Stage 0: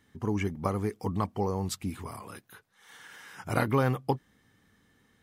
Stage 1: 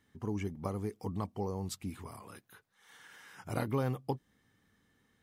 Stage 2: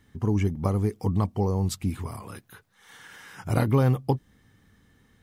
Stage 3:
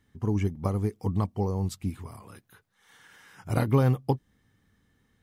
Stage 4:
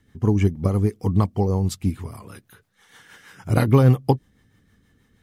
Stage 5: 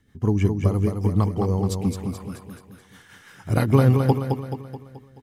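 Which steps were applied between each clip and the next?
dynamic bell 1.6 kHz, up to -6 dB, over -45 dBFS, Q 0.89; trim -6 dB
bass shelf 130 Hz +11 dB; trim +8 dB
upward expansion 1.5:1, over -32 dBFS
rotary cabinet horn 6.3 Hz; trim +9 dB
feedback delay 215 ms, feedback 50%, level -5.5 dB; trim -2 dB

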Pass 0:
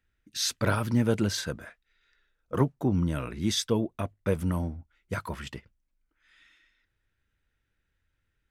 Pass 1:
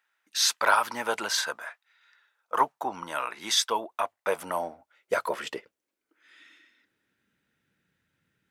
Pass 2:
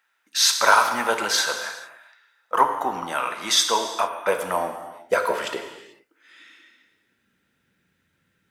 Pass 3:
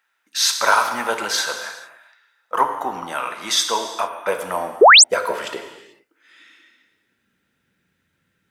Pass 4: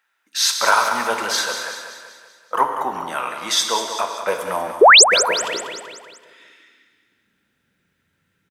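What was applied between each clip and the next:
high-pass sweep 890 Hz -> 170 Hz, 4.02–7.72 s; trim +5 dB
gated-style reverb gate 470 ms falling, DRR 5 dB; trim +5 dB
painted sound rise, 4.81–5.04 s, 350–9000 Hz -7 dBFS
feedback delay 191 ms, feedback 51%, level -9.5 dB

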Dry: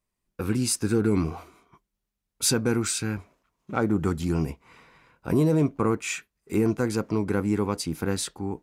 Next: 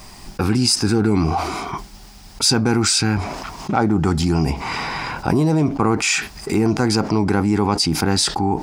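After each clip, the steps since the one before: graphic EQ with 31 bands 500 Hz -7 dB, 800 Hz +10 dB, 5 kHz +10 dB, 12.5 kHz -11 dB; level flattener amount 70%; trim +2 dB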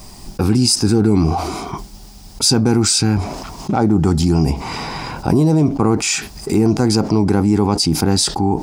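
peaking EQ 1.8 kHz -9 dB 2 oct; trim +4 dB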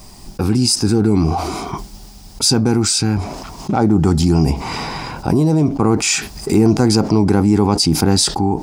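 level rider; trim -2 dB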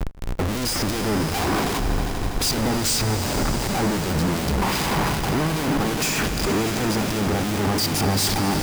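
Schmitt trigger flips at -30.5 dBFS; harmonic tremolo 2.6 Hz, depth 50%, crossover 2.2 kHz; echo with a slow build-up 81 ms, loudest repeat 5, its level -15 dB; trim -5 dB

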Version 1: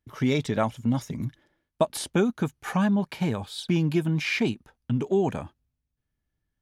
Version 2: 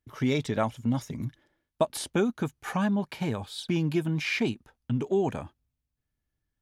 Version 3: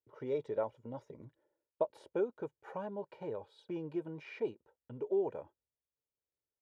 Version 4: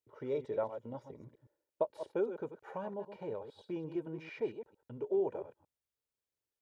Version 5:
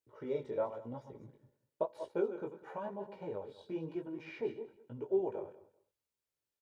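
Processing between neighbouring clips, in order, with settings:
peaking EQ 180 Hz -3.5 dB 0.29 oct; trim -2 dB
band-pass filter 520 Hz, Q 1.7; comb 2.1 ms, depth 53%; trim -5 dB
chunks repeated in reverse 113 ms, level -10 dB
on a send at -21.5 dB: reverberation RT60 0.30 s, pre-delay 5 ms; on the sum: chorus 0.98 Hz, delay 15.5 ms, depth 6.8 ms; feedback delay 195 ms, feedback 20%, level -19 dB; trim +2.5 dB

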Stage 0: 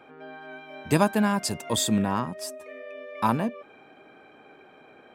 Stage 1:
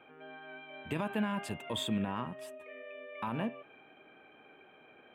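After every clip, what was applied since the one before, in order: resonant high shelf 3.9 kHz -9 dB, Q 3; de-hum 134.1 Hz, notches 25; peak limiter -16.5 dBFS, peak gain reduction 9.5 dB; trim -7.5 dB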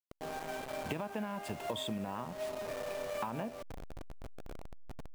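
send-on-delta sampling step -44 dBFS; peaking EQ 680 Hz +6.5 dB 1.1 oct; compression 16:1, threshold -40 dBFS, peak gain reduction 14.5 dB; trim +6 dB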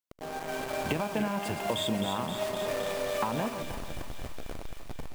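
backward echo that repeats 152 ms, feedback 61%, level -9.5 dB; level rider gain up to 5 dB; feedback echo behind a high-pass 261 ms, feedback 77%, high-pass 2.2 kHz, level -6.5 dB; trim +2 dB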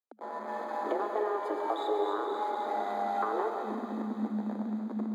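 frequency shift +210 Hz; boxcar filter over 16 samples; reverberation RT60 2.3 s, pre-delay 55 ms, DRR 5 dB

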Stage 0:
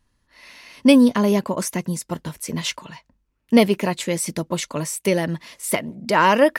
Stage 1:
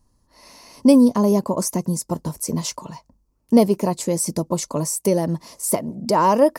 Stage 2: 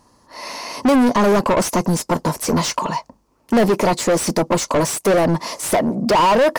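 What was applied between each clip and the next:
in parallel at 0 dB: compression, threshold -27 dBFS, peak gain reduction 17.5 dB; on the sum: high-order bell 2.3 kHz -14.5 dB; trim -1 dB
overdrive pedal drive 33 dB, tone 2.4 kHz, clips at -1.5 dBFS; trim -5.5 dB

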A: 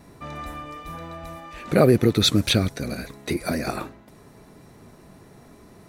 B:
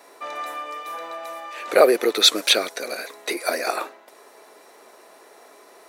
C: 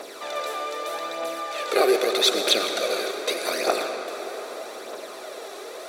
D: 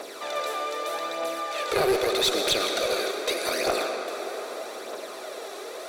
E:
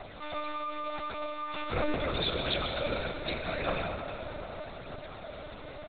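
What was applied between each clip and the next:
high-pass 440 Hz 24 dB/octave; trim +5.5 dB
spectral levelling over time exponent 0.6; phaser 0.81 Hz, delay 2.8 ms, feedback 55%; on a send at -5 dB: reverberation RT60 5.2 s, pre-delay 68 ms; on the sum: trim -8 dB
in parallel at +1 dB: peak limiter -15 dBFS, peak gain reduction 10 dB; on the sum: one-sided clip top -14.5 dBFS; trim -6.5 dB
bass shelf 190 Hz -11 dB; doubling 40 ms -10.5 dB; monotone LPC vocoder at 8 kHz 300 Hz; trim -5 dB

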